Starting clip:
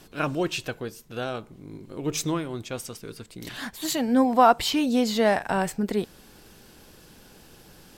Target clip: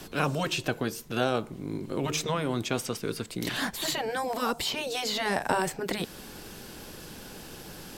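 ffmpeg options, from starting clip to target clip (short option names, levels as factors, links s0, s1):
-filter_complex "[0:a]acrossover=split=120|1000|4200[s0][s1][s2][s3];[s0]acompressor=threshold=0.00141:ratio=4[s4];[s1]acompressor=threshold=0.0398:ratio=4[s5];[s2]acompressor=threshold=0.01:ratio=4[s6];[s3]acompressor=threshold=0.00562:ratio=4[s7];[s4][s5][s6][s7]amix=inputs=4:normalize=0,afftfilt=real='re*lt(hypot(re,im),0.178)':imag='im*lt(hypot(re,im),0.178)':win_size=1024:overlap=0.75,volume=2.37"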